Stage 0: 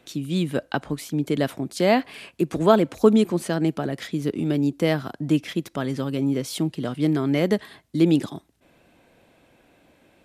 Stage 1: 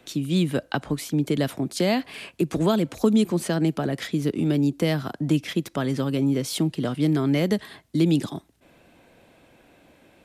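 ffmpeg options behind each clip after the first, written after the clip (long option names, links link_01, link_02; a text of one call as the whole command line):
ffmpeg -i in.wav -filter_complex "[0:a]acrossover=split=210|3000[link_01][link_02][link_03];[link_02]acompressor=threshold=-25dB:ratio=4[link_04];[link_01][link_04][link_03]amix=inputs=3:normalize=0,volume=2.5dB" out.wav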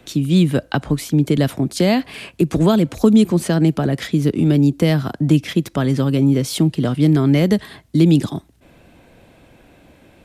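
ffmpeg -i in.wav -af "lowshelf=frequency=150:gain=10,volume=4.5dB" out.wav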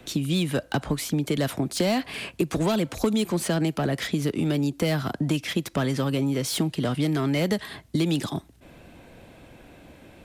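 ffmpeg -i in.wav -filter_complex "[0:a]acrossover=split=550[link_01][link_02];[link_01]acompressor=threshold=-24dB:ratio=6[link_03];[link_02]asoftclip=type=tanh:threshold=-23dB[link_04];[link_03][link_04]amix=inputs=2:normalize=0" out.wav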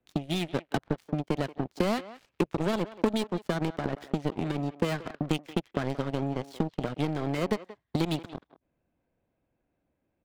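ffmpeg -i in.wav -filter_complex "[0:a]adynamicsmooth=sensitivity=7:basefreq=2000,aeval=exprs='0.316*(cos(1*acos(clip(val(0)/0.316,-1,1)))-cos(1*PI/2))+0.0355*(cos(3*acos(clip(val(0)/0.316,-1,1)))-cos(3*PI/2))+0.0316*(cos(7*acos(clip(val(0)/0.316,-1,1)))-cos(7*PI/2))':channel_layout=same,asplit=2[link_01][link_02];[link_02]adelay=180,highpass=300,lowpass=3400,asoftclip=type=hard:threshold=-19.5dB,volume=-15dB[link_03];[link_01][link_03]amix=inputs=2:normalize=0" out.wav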